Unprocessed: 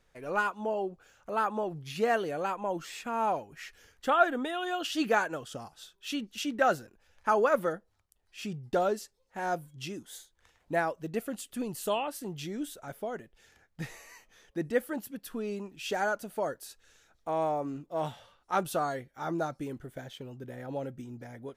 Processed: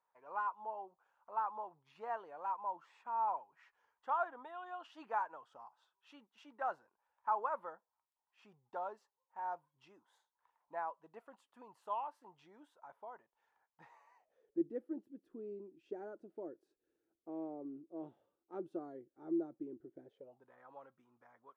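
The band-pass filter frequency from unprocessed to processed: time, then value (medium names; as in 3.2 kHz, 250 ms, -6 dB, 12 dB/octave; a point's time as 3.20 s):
band-pass filter, Q 6.8
14.06 s 960 Hz
14.60 s 340 Hz
20.03 s 340 Hz
20.51 s 1.1 kHz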